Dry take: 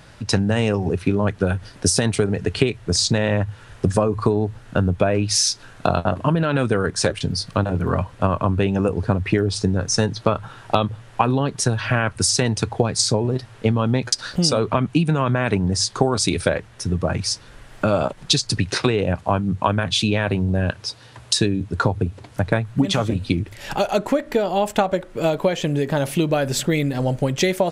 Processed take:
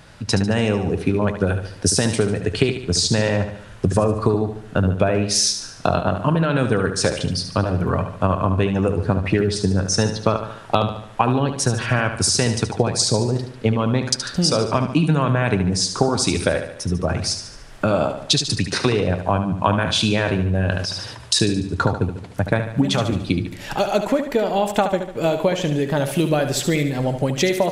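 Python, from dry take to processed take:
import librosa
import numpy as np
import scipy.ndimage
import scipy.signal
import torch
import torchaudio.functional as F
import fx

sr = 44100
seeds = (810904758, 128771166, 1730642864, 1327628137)

p1 = x + fx.echo_feedback(x, sr, ms=73, feedback_pct=50, wet_db=-9, dry=0)
y = fx.sustainer(p1, sr, db_per_s=43.0, at=(19.65, 21.39))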